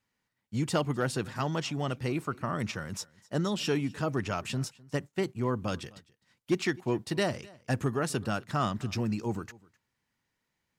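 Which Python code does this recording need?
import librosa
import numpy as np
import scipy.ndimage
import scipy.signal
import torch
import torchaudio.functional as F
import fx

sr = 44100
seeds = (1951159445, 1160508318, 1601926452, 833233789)

y = fx.fix_declip(x, sr, threshold_db=-18.5)
y = fx.fix_echo_inverse(y, sr, delay_ms=256, level_db=-23.5)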